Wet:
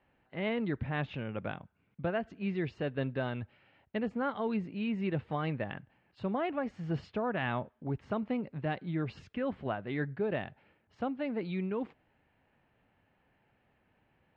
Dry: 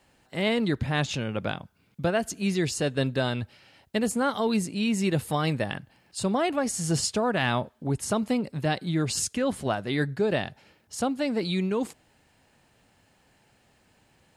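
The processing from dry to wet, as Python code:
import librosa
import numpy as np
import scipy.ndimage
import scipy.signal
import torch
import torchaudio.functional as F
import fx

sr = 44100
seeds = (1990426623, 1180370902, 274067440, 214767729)

y = scipy.signal.sosfilt(scipy.signal.butter(4, 2700.0, 'lowpass', fs=sr, output='sos'), x)
y = y * 10.0 ** (-7.5 / 20.0)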